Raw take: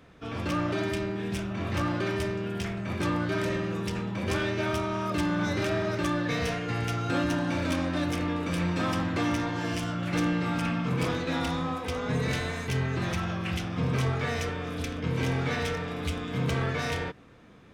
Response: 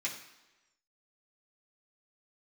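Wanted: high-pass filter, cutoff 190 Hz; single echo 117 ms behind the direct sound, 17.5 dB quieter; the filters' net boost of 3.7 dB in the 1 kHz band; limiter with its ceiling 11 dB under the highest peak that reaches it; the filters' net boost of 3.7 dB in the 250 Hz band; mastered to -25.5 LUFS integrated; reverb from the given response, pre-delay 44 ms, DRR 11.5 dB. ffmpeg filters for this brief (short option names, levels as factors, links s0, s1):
-filter_complex "[0:a]highpass=190,equalizer=f=250:t=o:g=6.5,equalizer=f=1000:t=o:g=4.5,alimiter=limit=0.0668:level=0:latency=1,aecho=1:1:117:0.133,asplit=2[s0][s1];[1:a]atrim=start_sample=2205,adelay=44[s2];[s1][s2]afir=irnorm=-1:irlink=0,volume=0.178[s3];[s0][s3]amix=inputs=2:normalize=0,volume=2.11"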